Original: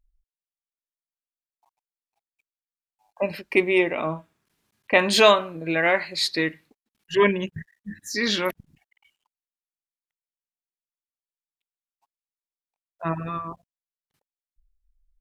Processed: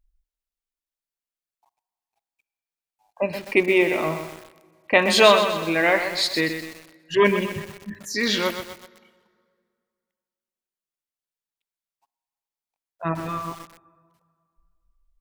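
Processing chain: on a send at -19.5 dB: reverberation RT60 2.1 s, pre-delay 32 ms; on the sum: bit-crushed delay 126 ms, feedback 55%, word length 6-bit, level -8 dB; trim +1 dB

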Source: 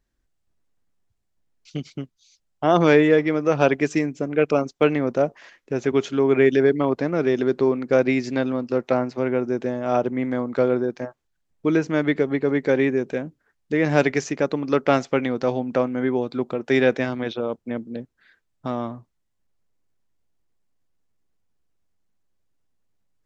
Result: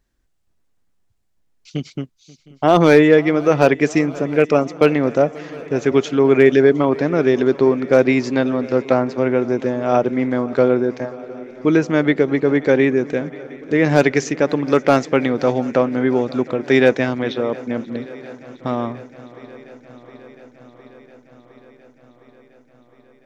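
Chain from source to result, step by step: hard clipper -7 dBFS, distortion -26 dB; on a send: shuffle delay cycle 711 ms, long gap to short 3:1, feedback 73%, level -22 dB; on the sum: trim +5 dB

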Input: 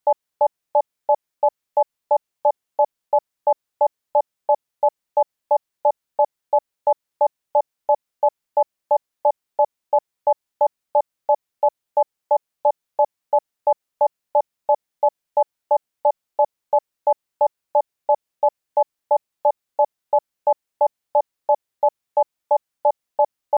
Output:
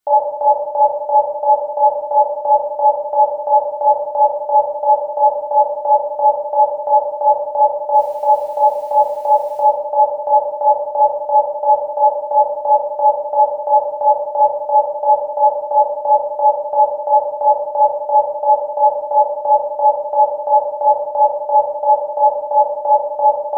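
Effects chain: 7.93–9.62 s: added noise white -59 dBFS; simulated room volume 570 m³, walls mixed, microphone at 3.3 m

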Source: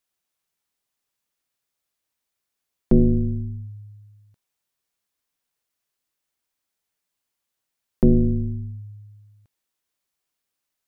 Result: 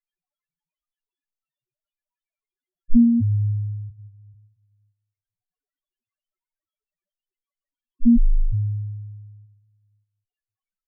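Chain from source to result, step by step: 2.93–3.90 s: high-pass 66 Hz 24 dB/octave; in parallel at -2.5 dB: peak limiter -15.5 dBFS, peak gain reduction 8 dB; on the sum: echo from a far wall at 100 m, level -25 dB; resampled via 8 kHz; on a send at -4.5 dB: reverberation RT60 0.60 s, pre-delay 5 ms; on the sum: loudest bins only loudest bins 1; trim +5 dB

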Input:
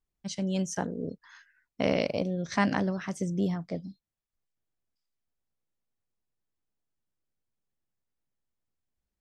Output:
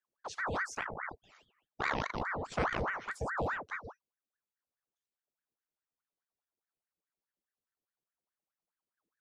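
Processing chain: high-pass 41 Hz; bass shelf 160 Hz +8 dB; ring modulator with a swept carrier 1 kHz, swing 75%, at 4.8 Hz; trim -6 dB

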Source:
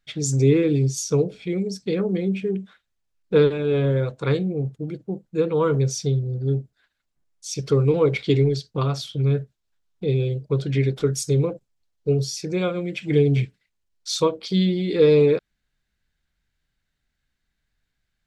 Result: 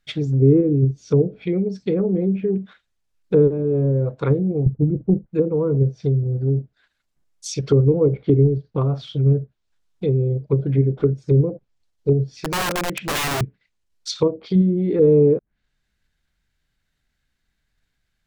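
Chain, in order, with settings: in parallel at -1.5 dB: level held to a coarse grid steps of 9 dB; 4.66–5.26 s: on the sum: tilt EQ -3.5 dB/octave; low-pass that closes with the level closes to 470 Hz, closed at -14.5 dBFS; 12.38–13.41 s: integer overflow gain 18 dB

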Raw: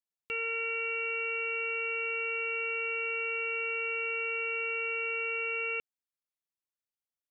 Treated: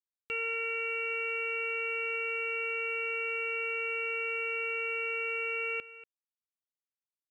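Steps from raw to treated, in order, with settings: bit crusher 11-bit; delay 238 ms -16.5 dB; 1.11–2.16 s: level flattener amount 100%

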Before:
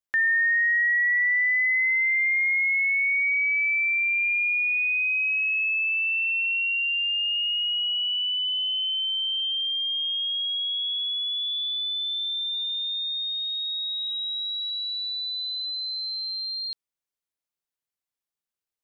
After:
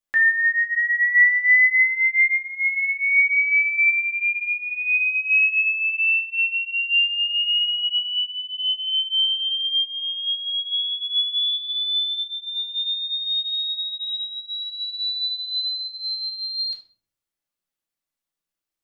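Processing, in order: 0.81–1.47 s: band-stop 1.3 kHz, Q 5.8; 9.77–10.23 s: low-pass 2.3 kHz -> 3.5 kHz 6 dB/octave; simulated room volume 450 m³, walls furnished, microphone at 2.4 m

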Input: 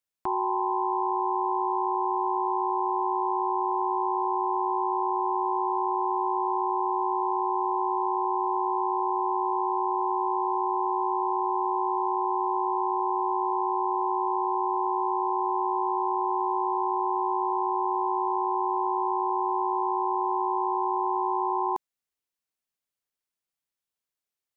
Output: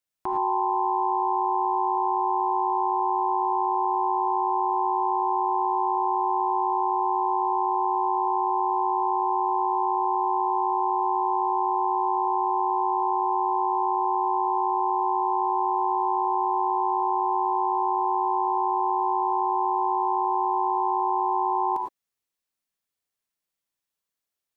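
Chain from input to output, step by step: gated-style reverb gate 130 ms rising, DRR 1.5 dB

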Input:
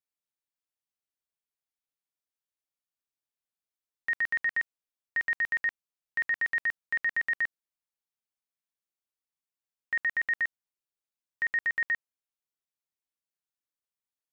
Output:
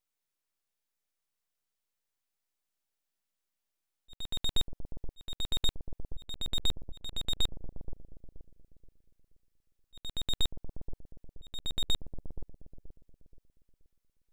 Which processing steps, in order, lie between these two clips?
full-wave rectifier; bucket-brigade echo 477 ms, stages 2048, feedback 35%, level -11 dB; slow attack 757 ms; trim +6.5 dB

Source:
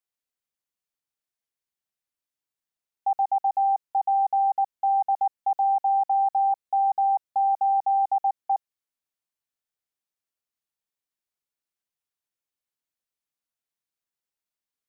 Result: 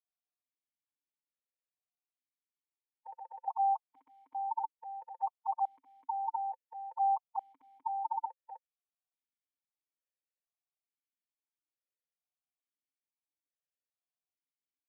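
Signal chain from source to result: formant shift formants +3 st; stepped vowel filter 2.3 Hz

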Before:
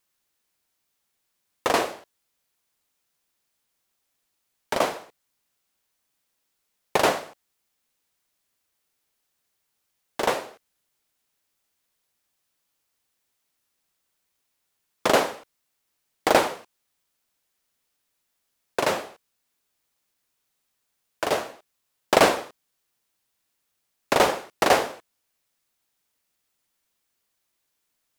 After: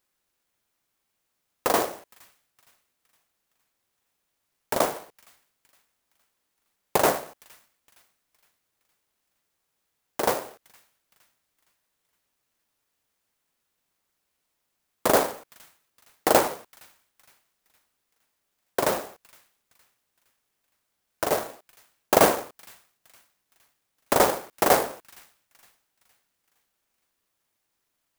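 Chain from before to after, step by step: dynamic bell 3.2 kHz, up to -5 dB, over -39 dBFS, Q 1.3; feedback echo behind a high-pass 464 ms, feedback 42%, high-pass 2.9 kHz, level -19 dB; sampling jitter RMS 0.071 ms

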